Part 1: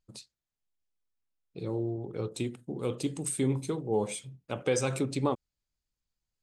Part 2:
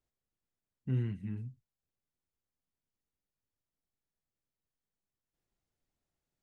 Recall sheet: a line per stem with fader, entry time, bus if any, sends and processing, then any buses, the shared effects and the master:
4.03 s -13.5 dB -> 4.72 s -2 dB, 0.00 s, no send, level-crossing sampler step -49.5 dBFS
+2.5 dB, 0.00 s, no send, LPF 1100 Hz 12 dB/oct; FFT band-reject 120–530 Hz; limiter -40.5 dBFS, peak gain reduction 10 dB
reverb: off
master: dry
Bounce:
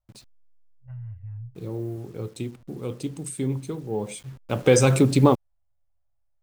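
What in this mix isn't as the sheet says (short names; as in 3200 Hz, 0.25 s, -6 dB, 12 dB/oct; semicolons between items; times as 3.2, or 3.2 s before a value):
stem 1 -13.5 dB -> -2.0 dB; master: extra low shelf 250 Hz +6.5 dB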